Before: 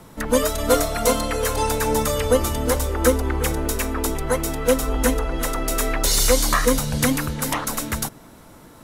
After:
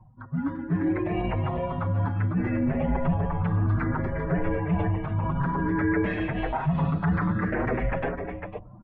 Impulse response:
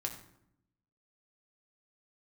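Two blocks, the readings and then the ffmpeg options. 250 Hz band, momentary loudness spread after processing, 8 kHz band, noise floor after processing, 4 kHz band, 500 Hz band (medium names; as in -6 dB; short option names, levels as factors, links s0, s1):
-1.0 dB, 5 LU, under -40 dB, -45 dBFS, under -20 dB, -10.0 dB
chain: -filter_complex "[0:a]afftfilt=real='re*pow(10,11/40*sin(2*PI*(0.61*log(max(b,1)*sr/1024/100)/log(2)-(0.59)*(pts-256)/sr)))':imag='im*pow(10,11/40*sin(2*PI*(0.61*log(max(b,1)*sr/1024/100)/log(2)-(0.59)*(pts-256)/sr)))':win_size=1024:overlap=0.75,afftdn=nr=21:nf=-41,equalizer=f=125:t=o:w=1:g=-9,equalizer=f=250:t=o:w=1:g=-5,equalizer=f=500:t=o:w=1:g=9,areverse,acompressor=threshold=0.0631:ratio=16,areverse,highpass=f=190:t=q:w=0.5412,highpass=f=190:t=q:w=1.307,lowpass=f=2500:t=q:w=0.5176,lowpass=f=2500:t=q:w=0.7071,lowpass=f=2500:t=q:w=1.932,afreqshift=-340,dynaudnorm=f=140:g=13:m=4.47,asplit=2[s0][s1];[s1]aecho=0:1:502:0.299[s2];[s0][s2]amix=inputs=2:normalize=0,alimiter=limit=0.168:level=0:latency=1:release=23,asplit=2[s3][s4];[s4]adelay=6.1,afreqshift=0.79[s5];[s3][s5]amix=inputs=2:normalize=1"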